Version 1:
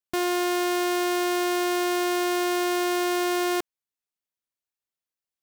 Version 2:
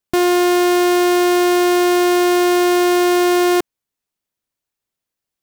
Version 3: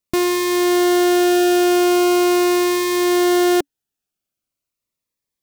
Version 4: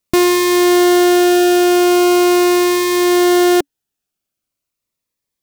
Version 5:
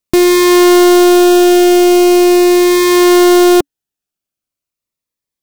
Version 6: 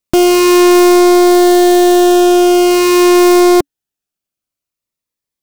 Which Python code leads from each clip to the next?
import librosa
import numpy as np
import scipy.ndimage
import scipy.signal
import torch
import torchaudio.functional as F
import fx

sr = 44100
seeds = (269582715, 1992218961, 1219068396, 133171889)

y1 = fx.low_shelf(x, sr, hz=490.0, db=6.5)
y1 = F.gain(torch.from_numpy(y1), 7.5).numpy()
y2 = fx.notch_cascade(y1, sr, direction='falling', hz=0.41)
y3 = fx.rider(y2, sr, range_db=10, speed_s=2.0)
y3 = F.gain(torch.from_numpy(y3), 4.0).numpy()
y4 = fx.leveller(y3, sr, passes=2)
y5 = fx.doppler_dist(y4, sr, depth_ms=0.34)